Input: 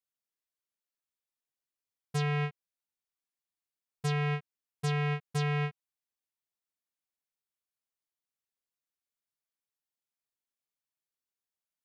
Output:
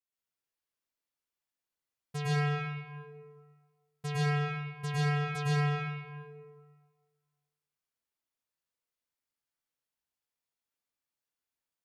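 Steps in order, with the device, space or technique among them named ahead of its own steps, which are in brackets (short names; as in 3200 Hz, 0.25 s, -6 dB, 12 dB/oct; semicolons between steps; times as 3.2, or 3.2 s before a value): stairwell (reverb RT60 1.7 s, pre-delay 0.101 s, DRR -8 dB); gain -6 dB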